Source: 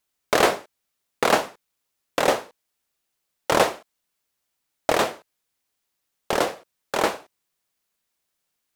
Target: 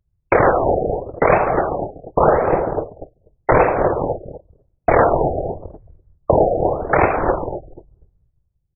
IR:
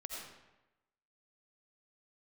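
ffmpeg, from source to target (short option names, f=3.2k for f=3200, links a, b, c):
-filter_complex "[0:a]aemphasis=mode=reproduction:type=bsi,asplit=2[a][b];[b]adelay=246,lowpass=f=820:p=1,volume=-14.5dB,asplit=2[c][d];[d]adelay=246,lowpass=f=820:p=1,volume=0.39,asplit=2[e][f];[f]adelay=246,lowpass=f=820:p=1,volume=0.39,asplit=2[g][h];[h]adelay=246,lowpass=f=820:p=1,volume=0.39[i];[a][c][e][g][i]amix=inputs=5:normalize=0,asplit=2[j][k];[1:a]atrim=start_sample=2205,lowpass=f=1.5k:w=0.5412,lowpass=f=1.5k:w=1.3066[l];[k][l]afir=irnorm=-1:irlink=0,volume=-9.5dB[m];[j][m]amix=inputs=2:normalize=0,anlmdn=0.0251,afftfilt=real='hypot(re,im)*cos(2*PI*random(0))':imag='hypot(re,im)*sin(2*PI*random(1))':win_size=512:overlap=0.75,acompressor=threshold=-36dB:ratio=4,equalizer=f=230:t=o:w=0.82:g=-9,alimiter=level_in=29dB:limit=-1dB:release=50:level=0:latency=1,afftfilt=real='re*lt(b*sr/1024,790*pow(2700/790,0.5+0.5*sin(2*PI*0.88*pts/sr)))':imag='im*lt(b*sr/1024,790*pow(2700/790,0.5+0.5*sin(2*PI*0.88*pts/sr)))':win_size=1024:overlap=0.75,volume=-1dB"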